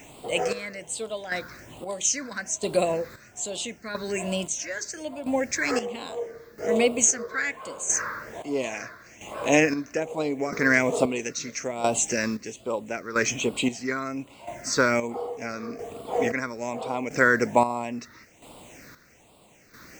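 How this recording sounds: a quantiser's noise floor 10-bit, dither triangular; phasing stages 6, 1.2 Hz, lowest notch 760–1700 Hz; chopped level 0.76 Hz, depth 65%, duty 40%

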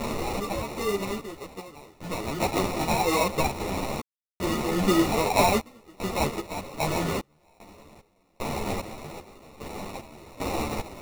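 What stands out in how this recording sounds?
a quantiser's noise floor 6-bit, dither triangular; random-step tremolo 2.5 Hz, depth 100%; aliases and images of a low sample rate 1600 Hz, jitter 0%; a shimmering, thickened sound

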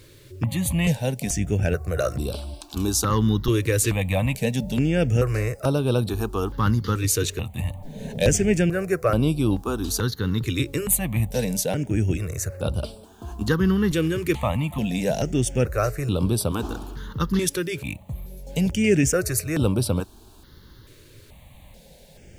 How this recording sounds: a quantiser's noise floor 10-bit, dither none; notches that jump at a steady rate 2.3 Hz 200–6600 Hz

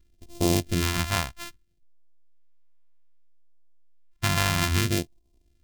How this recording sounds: a buzz of ramps at a fixed pitch in blocks of 128 samples; phasing stages 2, 0.62 Hz, lowest notch 350–1500 Hz

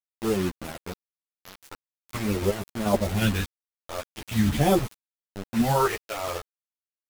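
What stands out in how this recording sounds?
phasing stages 2, 0.45 Hz, lowest notch 170–2500 Hz; random-step tremolo 2.8 Hz, depth 80%; a quantiser's noise floor 6-bit, dither none; a shimmering, thickened sound

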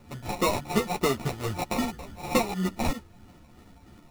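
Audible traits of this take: a buzz of ramps at a fixed pitch in blocks of 8 samples; phasing stages 12, 3.1 Hz, lowest notch 420–3400 Hz; aliases and images of a low sample rate 1600 Hz, jitter 0%; a shimmering, thickened sound

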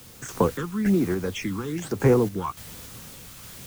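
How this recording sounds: phasing stages 8, 1.1 Hz, lowest notch 560–3900 Hz; a quantiser's noise floor 8-bit, dither triangular; random-step tremolo 3.5 Hz

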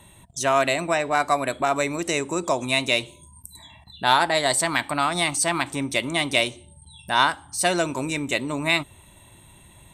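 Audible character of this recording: noise floor -51 dBFS; spectral tilt -2.5 dB/oct

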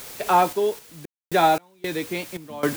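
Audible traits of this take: a quantiser's noise floor 6-bit, dither triangular; random-step tremolo 3.8 Hz, depth 100%

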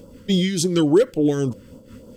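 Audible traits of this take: a quantiser's noise floor 12-bit, dither none; phasing stages 2, 3.5 Hz, lowest notch 700–1800 Hz; noise-modulated level

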